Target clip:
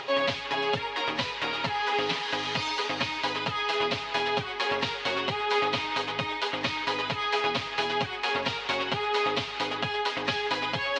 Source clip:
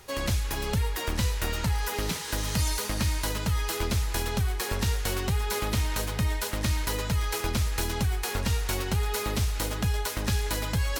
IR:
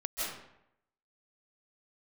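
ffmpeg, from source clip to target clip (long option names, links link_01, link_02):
-af "highpass=330,equalizer=frequency=350:width_type=q:width=4:gain=-5,equalizer=frequency=1500:width_type=q:width=4:gain=-4,equalizer=frequency=3000:width_type=q:width=4:gain=3,lowpass=frequency=4000:width=0.5412,lowpass=frequency=4000:width=1.3066,aecho=1:1:7.3:0.82,acompressor=mode=upward:threshold=-34dB:ratio=2.5,volume=4dB"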